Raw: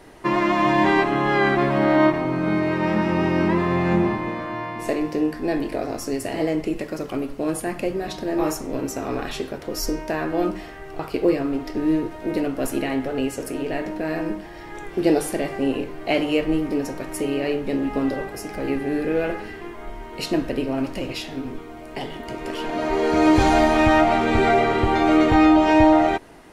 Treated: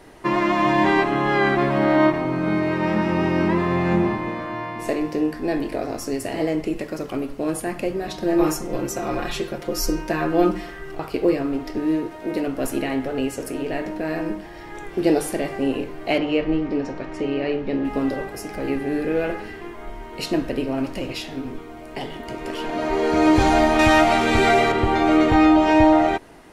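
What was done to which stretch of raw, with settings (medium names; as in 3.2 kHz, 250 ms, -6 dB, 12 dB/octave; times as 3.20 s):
8.22–10.95 s: comb 5.7 ms, depth 84%
11.79–12.48 s: bass shelf 100 Hz -11.5 dB
16.18–17.85 s: Bessel low-pass 3.9 kHz, order 4
23.79–24.72 s: peaking EQ 12 kHz +10 dB 3 oct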